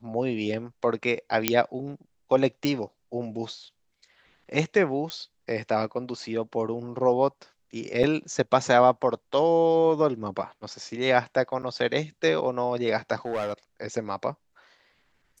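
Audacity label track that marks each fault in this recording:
1.480000	1.480000	pop -2 dBFS
2.650000	2.650000	pop -13 dBFS
5.100000	5.100000	pop -17 dBFS
8.030000	8.040000	dropout 6.1 ms
11.620000	11.630000	dropout 6.9 ms
13.250000	13.530000	clipped -24 dBFS

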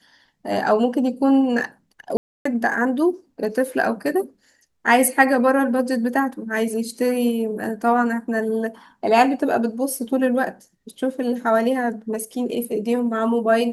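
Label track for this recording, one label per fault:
2.170000	2.450000	dropout 284 ms

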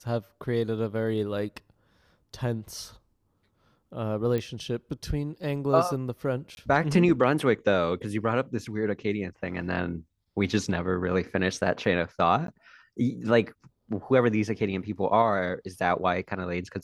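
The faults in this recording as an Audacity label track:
4.380000	4.380000	pop -18 dBFS
6.550000	6.570000	dropout 21 ms
12.470000	12.480000	dropout

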